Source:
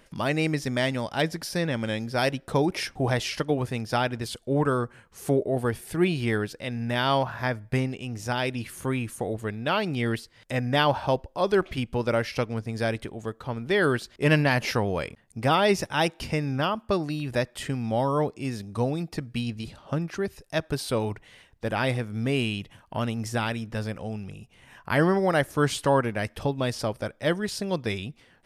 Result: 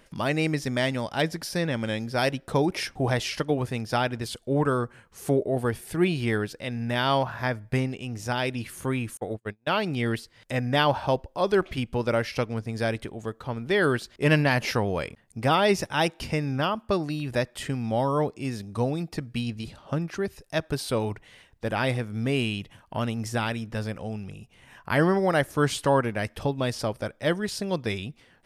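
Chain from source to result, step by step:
0:09.17–0:09.84: noise gate −28 dBFS, range −42 dB

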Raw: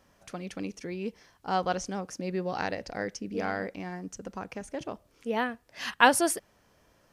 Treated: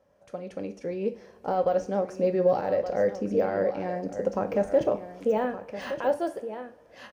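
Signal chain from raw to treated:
camcorder AGC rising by 7.9 dB per second
high-shelf EQ 2,000 Hz −8.5 dB
brickwall limiter −15 dBFS, peak gain reduction 9 dB
high-pass filter 43 Hz
parametric band 540 Hz +14 dB 0.62 octaves
single-tap delay 1,167 ms −12 dB
de-essing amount 100%
coupled-rooms reverb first 0.36 s, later 1.9 s, from −18 dB, DRR 6.5 dB
level −7.5 dB

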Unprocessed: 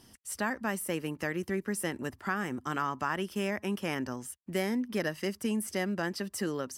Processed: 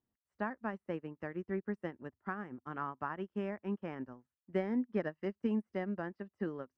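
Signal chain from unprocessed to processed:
low-pass filter 1,500 Hz 12 dB per octave
expander for the loud parts 2.5 to 1, over −47 dBFS

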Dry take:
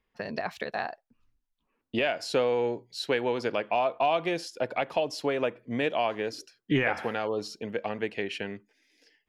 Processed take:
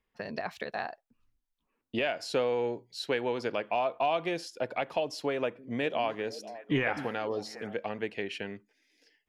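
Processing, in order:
0:05.33–0:07.74: echo through a band-pass that steps 251 ms, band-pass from 210 Hz, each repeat 1.4 octaves, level −9 dB
level −3 dB

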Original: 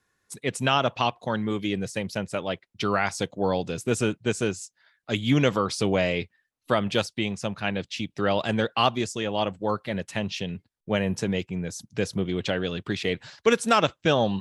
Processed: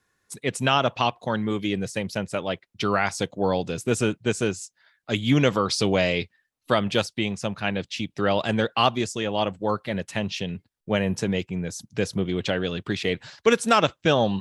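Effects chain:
0:05.63–0:06.81: dynamic equaliser 4,500 Hz, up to +6 dB, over −48 dBFS, Q 1.3
level +1.5 dB

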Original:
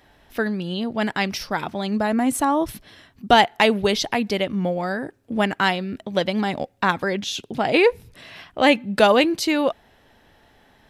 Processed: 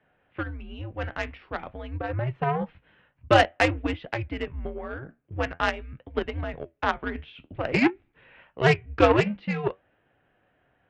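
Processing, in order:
flanger 0.49 Hz, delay 6.9 ms, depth 8.7 ms, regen −62%
single-sideband voice off tune −130 Hz 160–2,900 Hz
harmonic generator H 7 −21 dB, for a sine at −5 dBFS
level +2 dB

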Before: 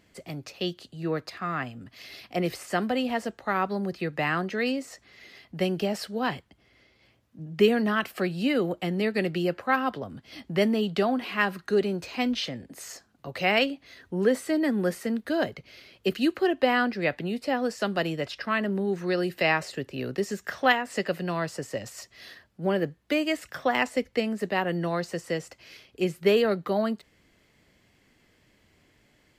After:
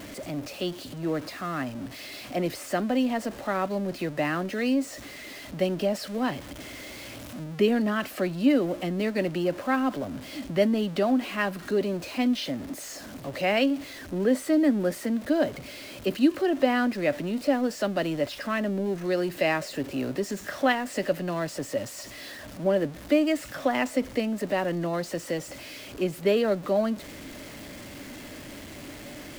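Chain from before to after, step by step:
converter with a step at zero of −34 dBFS
hollow resonant body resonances 280/580 Hz, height 10 dB, ringing for 40 ms
0:06.09–0:07.44: one half of a high-frequency compander encoder only
level −4.5 dB

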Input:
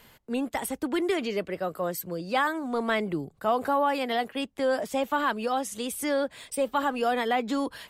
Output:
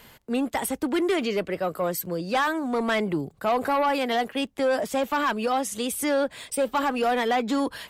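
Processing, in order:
harmonic generator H 5 −17 dB, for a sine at −13.5 dBFS
surface crackle 13 per second −45 dBFS

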